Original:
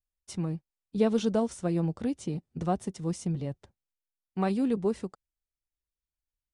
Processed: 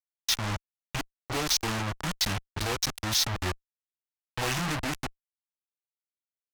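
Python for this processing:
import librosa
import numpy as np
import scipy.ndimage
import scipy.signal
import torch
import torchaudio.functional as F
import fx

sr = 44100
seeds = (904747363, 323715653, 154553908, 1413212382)

y = fx.pitch_bins(x, sr, semitones=-7.5)
y = fx.level_steps(y, sr, step_db=12)
y = fx.tilt_eq(y, sr, slope=2.0)
y = fx.gate_flip(y, sr, shuts_db=-24.0, range_db=-37)
y = fx.fuzz(y, sr, gain_db=57.0, gate_db=-46.0)
y = fx.graphic_eq(y, sr, hz=(125, 250, 500), db=(-11, -9, -7))
y = y * 10.0 ** (-5.5 / 20.0)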